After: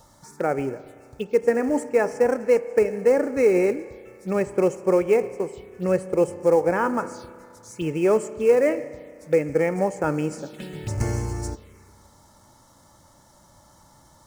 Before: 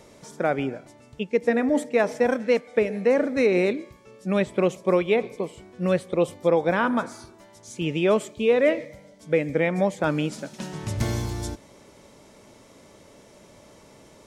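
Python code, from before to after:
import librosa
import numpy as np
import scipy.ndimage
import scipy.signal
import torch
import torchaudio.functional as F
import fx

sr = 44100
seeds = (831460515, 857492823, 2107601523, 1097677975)

p1 = x + 0.37 * np.pad(x, (int(2.3 * sr / 1000.0), 0))[:len(x)]
p2 = fx.quant_companded(p1, sr, bits=4)
p3 = p1 + (p2 * librosa.db_to_amplitude(-9.0))
p4 = fx.env_phaser(p3, sr, low_hz=360.0, high_hz=3600.0, full_db=-22.5)
p5 = fx.rev_spring(p4, sr, rt60_s=2.3, pass_ms=(32,), chirp_ms=35, drr_db=15.5)
y = p5 * librosa.db_to_amplitude(-2.0)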